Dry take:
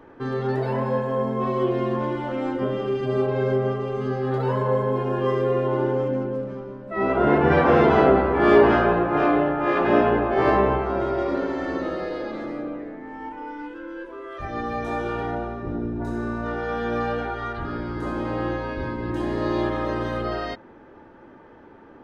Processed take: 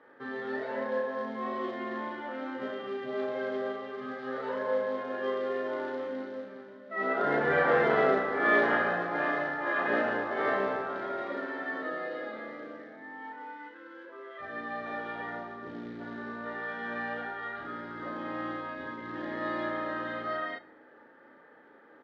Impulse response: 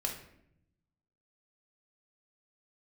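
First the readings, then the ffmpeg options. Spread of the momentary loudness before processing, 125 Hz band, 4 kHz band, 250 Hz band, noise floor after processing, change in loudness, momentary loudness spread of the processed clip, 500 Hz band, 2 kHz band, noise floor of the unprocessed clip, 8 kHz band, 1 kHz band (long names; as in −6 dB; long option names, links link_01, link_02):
15 LU, −21.0 dB, −7.0 dB, −13.0 dB, −56 dBFS, −9.0 dB, 16 LU, −10.0 dB, −1.5 dB, −48 dBFS, can't be measured, −8.5 dB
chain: -filter_complex "[0:a]acrusher=bits=5:mode=log:mix=0:aa=0.000001,highpass=360,equalizer=frequency=370:width_type=q:width=4:gain=-7,equalizer=frequency=680:width_type=q:width=4:gain=-5,equalizer=frequency=1000:width_type=q:width=4:gain=-7,equalizer=frequency=1800:width_type=q:width=4:gain=6,equalizer=frequency=2600:width_type=q:width=4:gain=-8,lowpass=frequency=3700:width=0.5412,lowpass=frequency=3700:width=1.3066,asplit=2[link_01][link_02];[link_02]adelay=35,volume=-3.5dB[link_03];[link_01][link_03]amix=inputs=2:normalize=0,asplit=2[link_04][link_05];[1:a]atrim=start_sample=2205,lowpass=4500[link_06];[link_05][link_06]afir=irnorm=-1:irlink=0,volume=-10.5dB[link_07];[link_04][link_07]amix=inputs=2:normalize=0,volume=-7.5dB"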